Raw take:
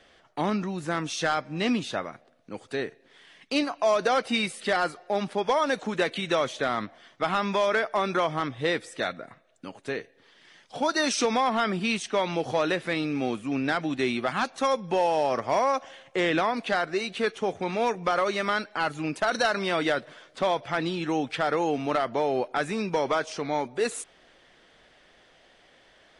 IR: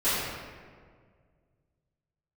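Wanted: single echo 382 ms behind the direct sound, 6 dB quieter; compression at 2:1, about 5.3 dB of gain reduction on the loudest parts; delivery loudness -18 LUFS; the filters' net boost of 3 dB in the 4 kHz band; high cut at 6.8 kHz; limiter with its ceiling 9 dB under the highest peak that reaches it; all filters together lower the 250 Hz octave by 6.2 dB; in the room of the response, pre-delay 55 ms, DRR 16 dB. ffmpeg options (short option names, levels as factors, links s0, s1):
-filter_complex "[0:a]lowpass=6800,equalizer=f=250:t=o:g=-8.5,equalizer=f=4000:t=o:g=4,acompressor=threshold=0.0316:ratio=2,alimiter=level_in=1.19:limit=0.0631:level=0:latency=1,volume=0.841,aecho=1:1:382:0.501,asplit=2[s0][s1];[1:a]atrim=start_sample=2205,adelay=55[s2];[s1][s2]afir=irnorm=-1:irlink=0,volume=0.0316[s3];[s0][s3]amix=inputs=2:normalize=0,volume=7.08"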